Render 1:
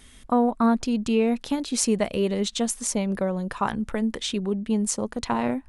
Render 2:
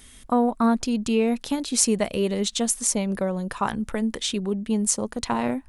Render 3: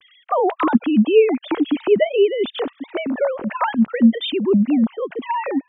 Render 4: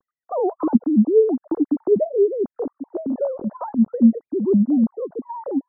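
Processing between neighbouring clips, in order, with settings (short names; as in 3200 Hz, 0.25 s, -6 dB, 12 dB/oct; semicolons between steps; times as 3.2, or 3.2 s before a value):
high shelf 6000 Hz +7.5 dB
sine-wave speech; gain +6 dB
Gaussian blur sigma 11 samples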